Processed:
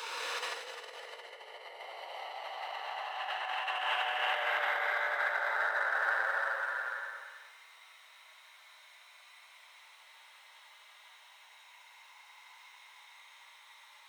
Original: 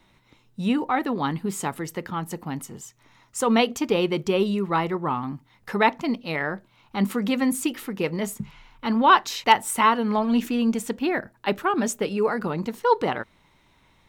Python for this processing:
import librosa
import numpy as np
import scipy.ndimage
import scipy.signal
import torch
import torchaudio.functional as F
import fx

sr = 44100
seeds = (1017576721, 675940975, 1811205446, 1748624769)

p1 = fx.paulstretch(x, sr, seeds[0], factor=27.0, window_s=0.1, from_s=12.99)
p2 = fx.dynamic_eq(p1, sr, hz=1600.0, q=0.88, threshold_db=-39.0, ratio=4.0, max_db=-4)
p3 = np.sign(p2) * np.maximum(np.abs(p2) - 10.0 ** (-38.0 / 20.0), 0.0)
p4 = p2 + F.gain(torch.from_numpy(p3), -11.0).numpy()
p5 = fx.over_compress(p4, sr, threshold_db=-32.0, ratio=-1.0)
p6 = scipy.signal.sosfilt(scipy.signal.bessel(6, 1100.0, 'highpass', norm='mag', fs=sr, output='sos'), p5)
y = F.gain(torch.from_numpy(p6), 2.5).numpy()